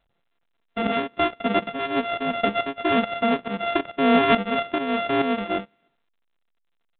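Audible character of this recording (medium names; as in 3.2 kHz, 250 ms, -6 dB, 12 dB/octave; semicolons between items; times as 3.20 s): a buzz of ramps at a fixed pitch in blocks of 64 samples; tremolo saw up 2.3 Hz, depth 70%; A-law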